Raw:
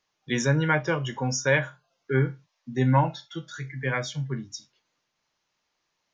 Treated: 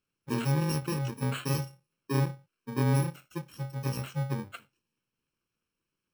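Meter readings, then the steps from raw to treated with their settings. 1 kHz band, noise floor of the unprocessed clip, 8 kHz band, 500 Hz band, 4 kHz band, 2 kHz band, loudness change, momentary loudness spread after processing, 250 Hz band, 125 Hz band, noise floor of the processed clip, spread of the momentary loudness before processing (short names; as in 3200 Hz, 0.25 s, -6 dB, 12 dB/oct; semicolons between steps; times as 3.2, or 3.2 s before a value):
-8.5 dB, -78 dBFS, n/a, -8.5 dB, -6.0 dB, -14.0 dB, -5.5 dB, 14 LU, -3.5 dB, -2.5 dB, under -85 dBFS, 16 LU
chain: FFT order left unsorted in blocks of 64 samples; LPF 1400 Hz 6 dB/oct; compressor 1.5:1, threshold -29 dBFS, peak gain reduction 4 dB; gain +1 dB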